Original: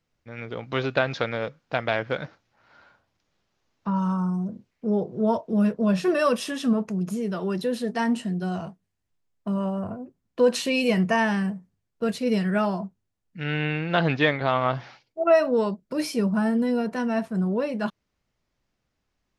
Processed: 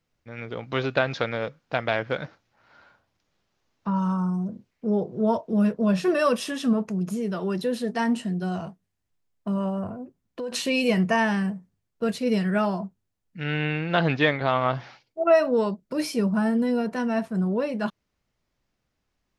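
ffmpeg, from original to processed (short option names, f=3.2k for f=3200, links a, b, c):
-filter_complex "[0:a]asettb=1/sr,asplit=3[a][b][c];[a]atrim=end=9.884[d];[b]atrim=start=9.88:end=10.52,asetpts=PTS-STARTPTS,afade=t=in:d=0.004:c=qsin,afade=t=out:st=0.636:d=0.004:c=qsin,acompressor=threshold=-31dB:ratio=4:attack=3.2:release=140:knee=1:detection=peak[e];[c]atrim=start=10.516[f];[d][e]acrossfade=d=0.004:c1=hsin:c2=qsin[g];[g][f]acrossfade=d=0.004:c1=qsin:c2=hsin"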